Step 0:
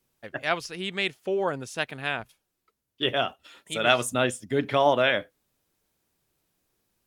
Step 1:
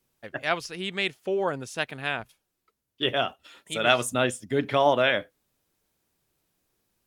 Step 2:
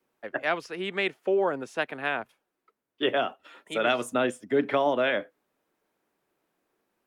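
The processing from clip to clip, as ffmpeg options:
ffmpeg -i in.wav -af anull out.wav
ffmpeg -i in.wav -filter_complex "[0:a]acrossover=split=220 2300:gain=0.1 1 0.2[link_01][link_02][link_03];[link_01][link_02][link_03]amix=inputs=3:normalize=0,acrossover=split=340|3000[link_04][link_05][link_06];[link_05]acompressor=threshold=-28dB:ratio=6[link_07];[link_04][link_07][link_06]amix=inputs=3:normalize=0,volume=4.5dB" out.wav

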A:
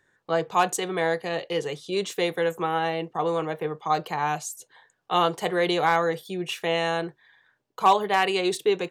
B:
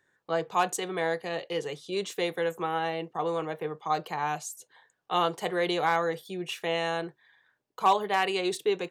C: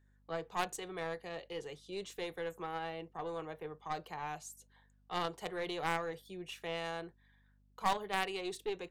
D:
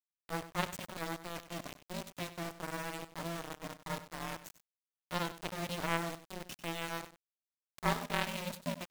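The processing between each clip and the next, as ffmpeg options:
ffmpeg -i in.wav -af "lowshelf=frequency=65:gain=-10.5,volume=-4dB" out.wav
ffmpeg -i in.wav -af "aeval=exprs='val(0)+0.00141*(sin(2*PI*50*n/s)+sin(2*PI*2*50*n/s)/2+sin(2*PI*3*50*n/s)/3+sin(2*PI*4*50*n/s)/4+sin(2*PI*5*50*n/s)/5)':channel_layout=same,aeval=exprs='0.224*(cos(1*acos(clip(val(0)/0.224,-1,1)))-cos(1*PI/2))+0.0501*(cos(2*acos(clip(val(0)/0.224,-1,1)))-cos(2*PI/2))+0.0631*(cos(3*acos(clip(val(0)/0.224,-1,1)))-cos(3*PI/2))+0.0251*(cos(5*acos(clip(val(0)/0.224,-1,1)))-cos(5*PI/2))+0.00141*(cos(8*acos(clip(val(0)/0.224,-1,1)))-cos(8*PI/2))':channel_layout=same,volume=-7.5dB" out.wav
ffmpeg -i in.wav -af "acrusher=bits=4:dc=4:mix=0:aa=0.000001,aeval=exprs='val(0)*sin(2*PI*170*n/s)':channel_layout=same,aecho=1:1:96:0.2,volume=4dB" out.wav

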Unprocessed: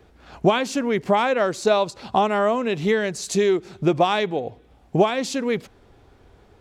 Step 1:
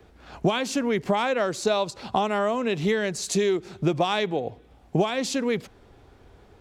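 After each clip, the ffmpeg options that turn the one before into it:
ffmpeg -i in.wav -filter_complex "[0:a]acrossover=split=140|3000[link_01][link_02][link_03];[link_02]acompressor=threshold=-22dB:ratio=2.5[link_04];[link_01][link_04][link_03]amix=inputs=3:normalize=0" out.wav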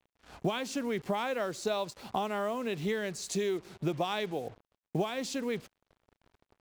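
ffmpeg -i in.wav -af "acrusher=bits=6:mix=0:aa=0.5,volume=-8.5dB" out.wav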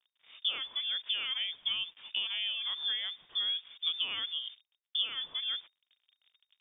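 ffmpeg -i in.wav -af "highshelf=frequency=2400:gain=-9,lowpass=frequency=3100:width_type=q:width=0.5098,lowpass=frequency=3100:width_type=q:width=0.6013,lowpass=frequency=3100:width_type=q:width=0.9,lowpass=frequency=3100:width_type=q:width=2.563,afreqshift=-3700,volume=-1.5dB" out.wav

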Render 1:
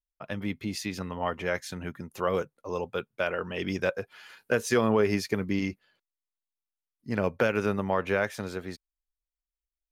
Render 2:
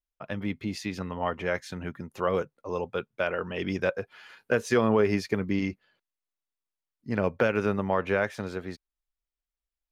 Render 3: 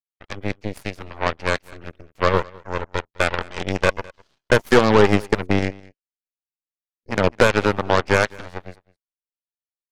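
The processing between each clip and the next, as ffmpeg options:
ffmpeg -i in.wav -af "lowpass=frequency=3800:poles=1,volume=1dB" out.wav
ffmpeg -i in.wav -af "aeval=exprs='0.266*(cos(1*acos(clip(val(0)/0.266,-1,1)))-cos(1*PI/2))+0.0237*(cos(4*acos(clip(val(0)/0.266,-1,1)))-cos(4*PI/2))+0.0376*(cos(7*acos(clip(val(0)/0.266,-1,1)))-cos(7*PI/2))+0.0188*(cos(8*acos(clip(val(0)/0.266,-1,1)))-cos(8*PI/2))':channel_layout=same,aecho=1:1:207:0.0668,volume=9dB" out.wav

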